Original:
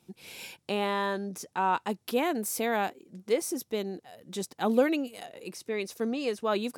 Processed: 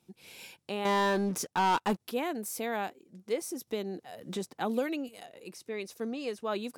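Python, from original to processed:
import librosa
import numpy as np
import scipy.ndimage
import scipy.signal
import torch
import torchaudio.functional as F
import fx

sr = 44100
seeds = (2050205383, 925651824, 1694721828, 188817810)

y = fx.leveller(x, sr, passes=3, at=(0.85, 2.0))
y = fx.band_squash(y, sr, depth_pct=70, at=(3.67, 5.09))
y = y * 10.0 ** (-5.0 / 20.0)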